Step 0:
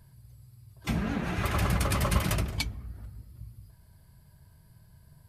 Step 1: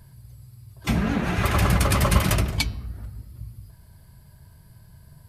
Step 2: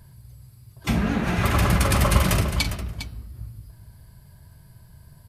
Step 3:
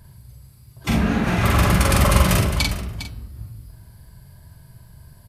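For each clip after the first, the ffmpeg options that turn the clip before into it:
-af "bandreject=f=159:t=h:w=4,bandreject=f=318:t=h:w=4,bandreject=f=477:t=h:w=4,bandreject=f=636:t=h:w=4,bandreject=f=795:t=h:w=4,bandreject=f=954:t=h:w=4,bandreject=f=1.113k:t=h:w=4,bandreject=f=1.272k:t=h:w=4,bandreject=f=1.431k:t=h:w=4,bandreject=f=1.59k:t=h:w=4,bandreject=f=1.749k:t=h:w=4,bandreject=f=1.908k:t=h:w=4,bandreject=f=2.067k:t=h:w=4,bandreject=f=2.226k:t=h:w=4,bandreject=f=2.385k:t=h:w=4,bandreject=f=2.544k:t=h:w=4,bandreject=f=2.703k:t=h:w=4,bandreject=f=2.862k:t=h:w=4,bandreject=f=3.021k:t=h:w=4,bandreject=f=3.18k:t=h:w=4,bandreject=f=3.339k:t=h:w=4,bandreject=f=3.498k:t=h:w=4,bandreject=f=3.657k:t=h:w=4,bandreject=f=3.816k:t=h:w=4,bandreject=f=3.975k:t=h:w=4,bandreject=f=4.134k:t=h:w=4,bandreject=f=4.293k:t=h:w=4,bandreject=f=4.452k:t=h:w=4,bandreject=f=4.611k:t=h:w=4,bandreject=f=4.77k:t=h:w=4,bandreject=f=4.929k:t=h:w=4,bandreject=f=5.088k:t=h:w=4,bandreject=f=5.247k:t=h:w=4,bandreject=f=5.406k:t=h:w=4,bandreject=f=5.565k:t=h:w=4,bandreject=f=5.724k:t=h:w=4,volume=7dB"
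-af "aecho=1:1:44|405:0.299|0.282"
-filter_complex "[0:a]asplit=2[a][b];[b]adelay=44,volume=-5.5dB[c];[a][c]amix=inputs=2:normalize=0,volume=1.5dB"

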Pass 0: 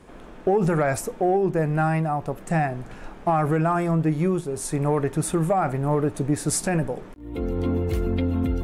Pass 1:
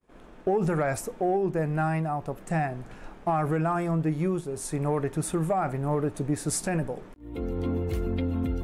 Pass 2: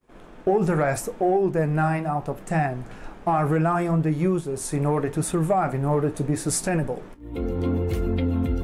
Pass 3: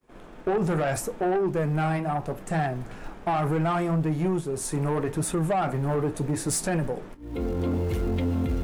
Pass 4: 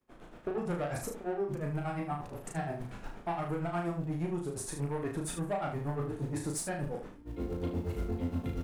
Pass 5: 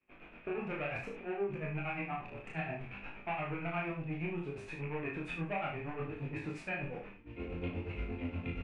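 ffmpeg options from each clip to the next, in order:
-af "agate=range=-33dB:threshold=-39dB:ratio=3:detection=peak,volume=-4.5dB"
-af "flanger=delay=7.1:depth=8.9:regen=-65:speed=0.75:shape=triangular,volume=8.5dB"
-filter_complex "[0:a]acrossover=split=100[a][b];[a]acrusher=bits=4:mode=log:mix=0:aa=0.000001[c];[c][b]amix=inputs=2:normalize=0,asoftclip=type=tanh:threshold=-19.5dB"
-filter_complex "[0:a]alimiter=limit=-24dB:level=0:latency=1:release=19,tremolo=f=8.5:d=0.97,asplit=2[a][b];[b]aecho=0:1:35|75:0.668|0.398[c];[a][c]amix=inputs=2:normalize=0,volume=-3.5dB"
-filter_complex "[0:a]lowpass=f=2.5k:t=q:w=11,flanger=delay=19:depth=7.2:speed=0.62,asplit=2[a][b];[b]adelay=30,volume=-13.5dB[c];[a][c]amix=inputs=2:normalize=0,volume=-2dB"

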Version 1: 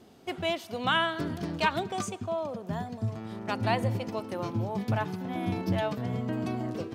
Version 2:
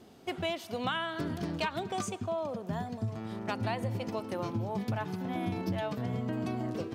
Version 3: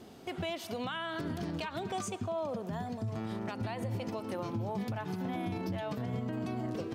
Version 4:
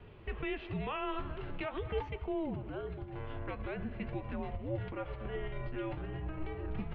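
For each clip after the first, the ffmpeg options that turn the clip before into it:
-af "acompressor=threshold=-29dB:ratio=6"
-af "alimiter=level_in=7dB:limit=-24dB:level=0:latency=1:release=123,volume=-7dB,volume=3.5dB"
-af "flanger=delay=4:depth=8.2:regen=69:speed=0.44:shape=sinusoidal,highpass=f=250:t=q:w=0.5412,highpass=f=250:t=q:w=1.307,lowpass=f=3.3k:t=q:w=0.5176,lowpass=f=3.3k:t=q:w=0.7071,lowpass=f=3.3k:t=q:w=1.932,afreqshift=-310,volume=5dB"

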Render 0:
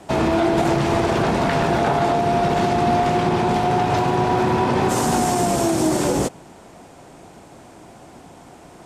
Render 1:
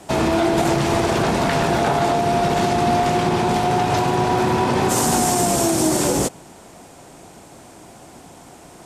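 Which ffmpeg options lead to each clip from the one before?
-af "highshelf=f=5k:g=9"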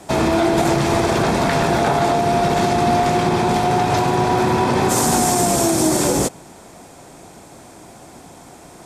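-af "bandreject=f=2.9k:w=15,volume=1.5dB"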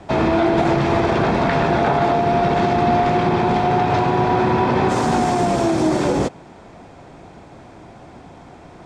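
-filter_complex "[0:a]lowpass=3.2k,acrossover=split=140[a][b];[a]acompressor=mode=upward:threshold=-42dB:ratio=2.5[c];[c][b]amix=inputs=2:normalize=0"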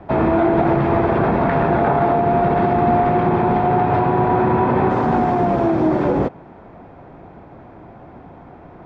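-af "lowpass=1.7k,volume=1dB"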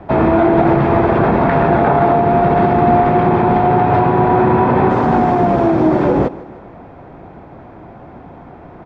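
-af "aecho=1:1:153|306|459|612:0.112|0.0527|0.0248|0.0116,volume=4dB"

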